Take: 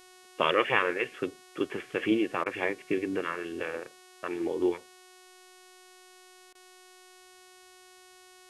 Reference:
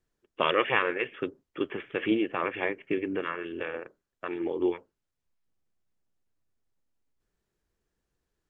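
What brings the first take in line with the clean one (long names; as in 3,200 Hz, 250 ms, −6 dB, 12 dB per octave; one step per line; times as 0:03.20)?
hum removal 368 Hz, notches 32
repair the gap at 0:02.44/0:06.53, 19 ms
downward expander −47 dBFS, range −21 dB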